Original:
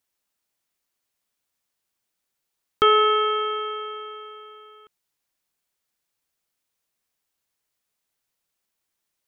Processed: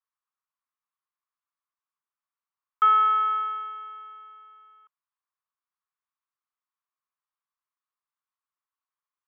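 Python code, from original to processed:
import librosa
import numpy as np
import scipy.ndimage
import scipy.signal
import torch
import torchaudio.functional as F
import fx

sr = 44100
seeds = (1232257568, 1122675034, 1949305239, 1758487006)

y = fx.dynamic_eq(x, sr, hz=1200.0, q=0.73, threshold_db=-28.0, ratio=4.0, max_db=5)
y = fx.ladder_bandpass(y, sr, hz=1200.0, resonance_pct=70)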